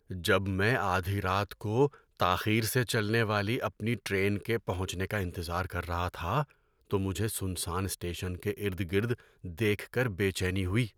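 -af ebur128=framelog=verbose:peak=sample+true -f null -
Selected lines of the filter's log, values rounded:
Integrated loudness:
  I:         -31.0 LUFS
  Threshold: -41.1 LUFS
Loudness range:
  LRA:         4.6 LU
  Threshold: -51.5 LUFS
  LRA low:   -33.7 LUFS
  LRA high:  -29.1 LUFS
Sample peak:
  Peak:      -11.5 dBFS
True peak:
  Peak:      -11.5 dBFS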